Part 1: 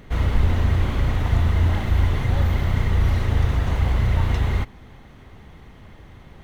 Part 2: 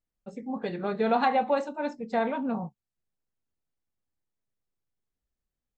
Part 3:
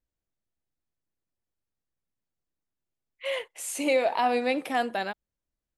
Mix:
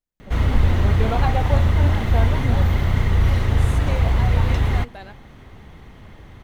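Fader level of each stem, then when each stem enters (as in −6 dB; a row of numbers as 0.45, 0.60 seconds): +2.0, −1.5, −9.5 decibels; 0.20, 0.00, 0.00 seconds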